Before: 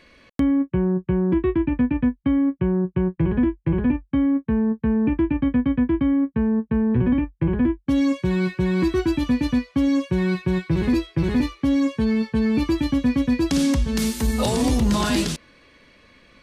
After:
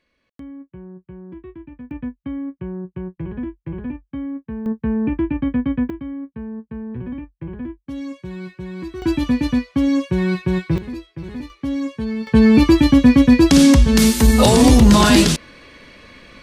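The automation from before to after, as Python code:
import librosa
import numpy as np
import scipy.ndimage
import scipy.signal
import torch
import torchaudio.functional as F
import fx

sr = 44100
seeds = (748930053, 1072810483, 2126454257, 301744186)

y = fx.gain(x, sr, db=fx.steps((0.0, -17.0), (1.91, -8.0), (4.66, 0.0), (5.9, -10.0), (9.02, 2.5), (10.78, -10.0), (11.5, -3.5), (12.27, 9.5)))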